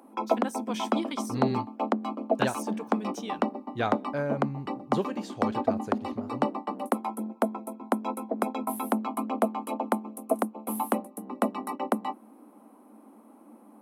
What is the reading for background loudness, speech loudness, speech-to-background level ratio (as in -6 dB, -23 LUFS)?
-31.0 LUFS, -35.5 LUFS, -4.5 dB